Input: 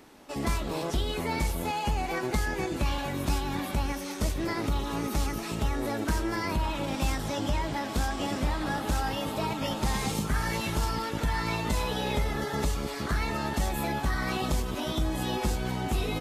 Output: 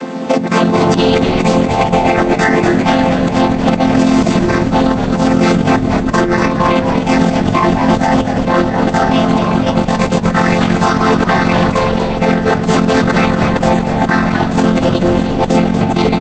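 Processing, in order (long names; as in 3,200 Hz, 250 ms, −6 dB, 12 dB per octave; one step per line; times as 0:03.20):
channel vocoder with a chord as carrier major triad, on F3
low-shelf EQ 200 Hz −5.5 dB
compressor whose output falls as the input rises −39 dBFS, ratio −0.5
echo with shifted repeats 238 ms, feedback 61%, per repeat −72 Hz, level −10 dB
boost into a limiter +30.5 dB
level −1 dB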